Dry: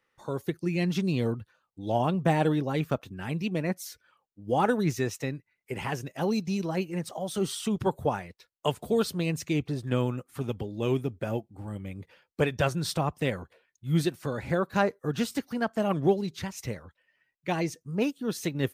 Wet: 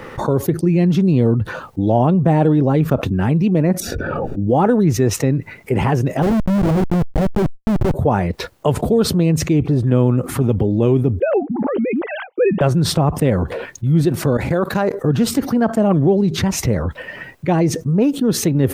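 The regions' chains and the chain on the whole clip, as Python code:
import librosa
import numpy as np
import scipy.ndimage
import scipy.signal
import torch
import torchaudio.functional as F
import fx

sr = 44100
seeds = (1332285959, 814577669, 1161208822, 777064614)

y = fx.chain(x, sr, fx.moving_average(points=42),
    fx.pre_swell(db_per_s=25.0), at=(3.8, 4.47))
y = fx.chain(y, sr, fx.law_mismatch(coded='A'),
    fx.gaussian_blur(sigma=3.5),
    fx.schmitt(flips_db=-35.5), at=(6.22, 7.94))
y = fx.chain(y, sr, fx.sine_speech(),
    fx.notch(hz=720.0, q=16.0), at=(11.2, 12.61))
y = fx.chain(y, sr, fx.tilt_eq(slope=2.0),
    fx.level_steps(step_db=17), at=(14.37, 14.94))
y = fx.tilt_shelf(y, sr, db=8.5, hz=1300.0)
y = fx.env_flatten(y, sr, amount_pct=70)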